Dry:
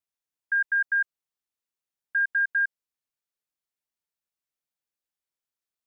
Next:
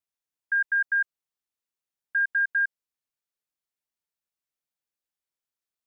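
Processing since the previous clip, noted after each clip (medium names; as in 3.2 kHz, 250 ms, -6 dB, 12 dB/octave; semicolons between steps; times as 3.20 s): no audible change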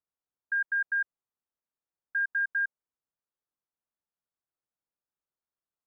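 low-pass 1.5 kHz 24 dB/octave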